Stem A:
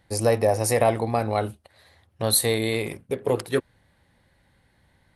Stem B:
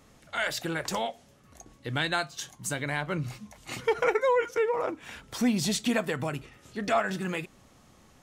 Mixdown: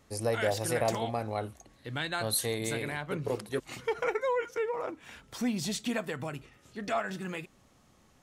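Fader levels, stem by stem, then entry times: −9.5, −5.5 decibels; 0.00, 0.00 seconds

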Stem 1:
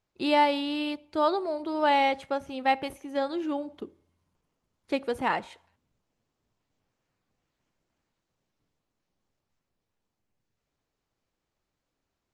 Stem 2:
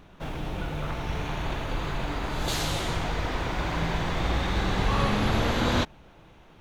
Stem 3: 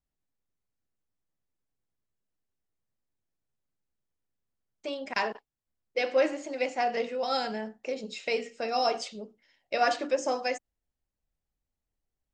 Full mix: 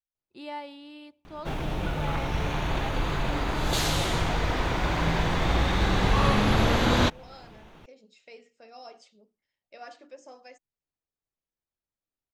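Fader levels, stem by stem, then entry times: −15.5, +2.5, −19.0 decibels; 0.15, 1.25, 0.00 seconds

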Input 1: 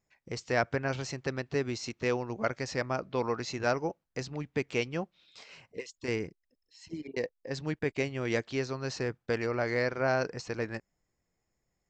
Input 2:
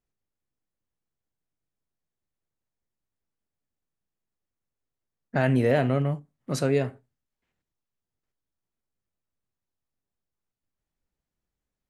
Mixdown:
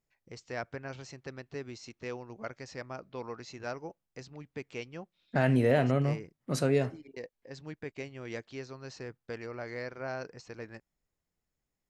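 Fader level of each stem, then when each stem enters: −9.5, −3.0 decibels; 0.00, 0.00 seconds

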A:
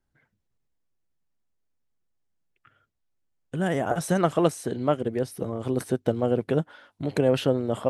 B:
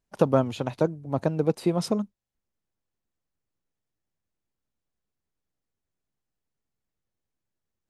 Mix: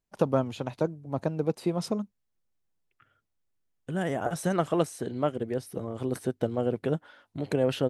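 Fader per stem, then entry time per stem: −4.0, −4.0 decibels; 0.35, 0.00 seconds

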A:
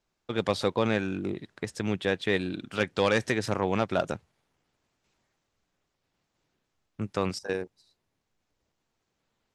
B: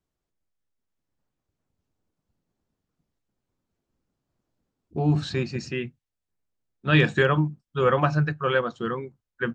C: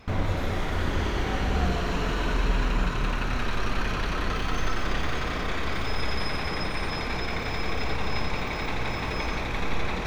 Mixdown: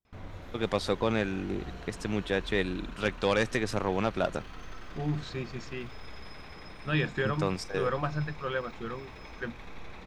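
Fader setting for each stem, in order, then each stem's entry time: −2.0, −9.5, −17.0 decibels; 0.25, 0.00, 0.05 seconds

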